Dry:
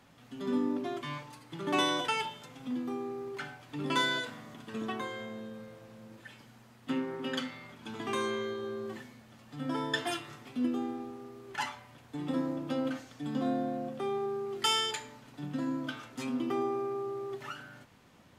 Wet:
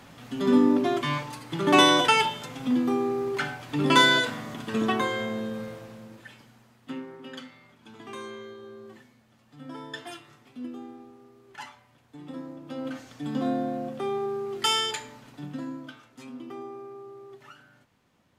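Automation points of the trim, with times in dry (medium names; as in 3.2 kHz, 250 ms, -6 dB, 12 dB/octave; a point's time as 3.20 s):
5.68 s +11 dB
6.12 s +4.5 dB
7.24 s -6.5 dB
12.61 s -6.5 dB
13.09 s +4 dB
15.27 s +4 dB
16.02 s -7.5 dB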